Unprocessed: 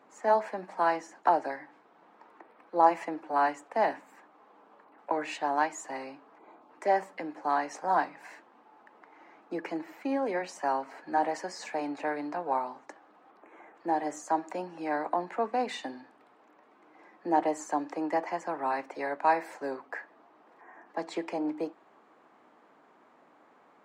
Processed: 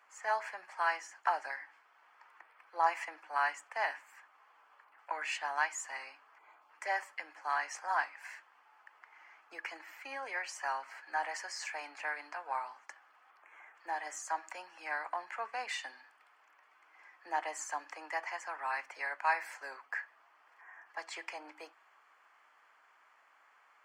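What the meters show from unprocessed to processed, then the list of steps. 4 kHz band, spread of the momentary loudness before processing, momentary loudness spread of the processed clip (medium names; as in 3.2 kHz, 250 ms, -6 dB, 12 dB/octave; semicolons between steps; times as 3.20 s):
0.0 dB, 13 LU, 16 LU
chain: Chebyshev high-pass 1.6 kHz, order 2; band-stop 3.8 kHz, Q 5.2; trim +2.5 dB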